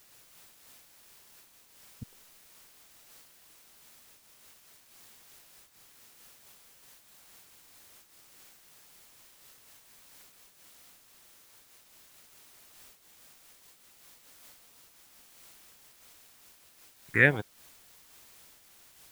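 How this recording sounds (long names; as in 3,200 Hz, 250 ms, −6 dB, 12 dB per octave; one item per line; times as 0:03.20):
phaser sweep stages 4, 1.1 Hz, lowest notch 530–2,100 Hz
a quantiser's noise floor 10 bits, dither triangular
amplitude modulation by smooth noise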